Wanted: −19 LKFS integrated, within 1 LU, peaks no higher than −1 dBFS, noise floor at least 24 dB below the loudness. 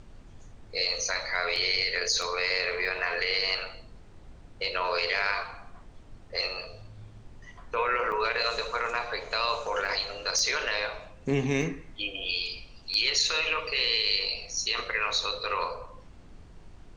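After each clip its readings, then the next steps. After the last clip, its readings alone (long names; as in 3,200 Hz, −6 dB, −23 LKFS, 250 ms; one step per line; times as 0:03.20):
number of dropouts 8; longest dropout 1.9 ms; background noise floor −50 dBFS; target noise floor −52 dBFS; integrated loudness −28.0 LKFS; sample peak −11.5 dBFS; target loudness −19.0 LKFS
→ repair the gap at 0:01.56/0:02.22/0:02.85/0:08.12/0:09.85/0:10.39/0:11.62/0:12.94, 1.9 ms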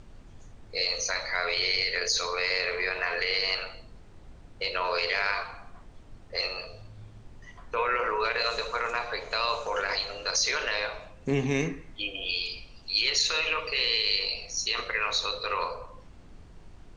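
number of dropouts 0; background noise floor −50 dBFS; target noise floor −52 dBFS
→ noise reduction from a noise print 6 dB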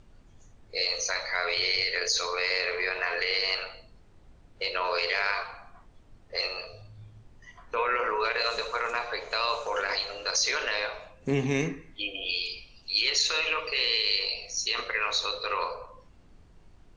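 background noise floor −56 dBFS; integrated loudness −28.0 LKFS; sample peak −11.5 dBFS; target loudness −19.0 LKFS
→ level +9 dB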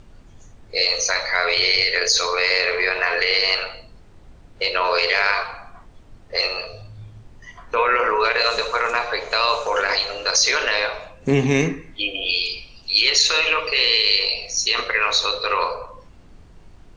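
integrated loudness −19.0 LKFS; sample peak −2.5 dBFS; background noise floor −47 dBFS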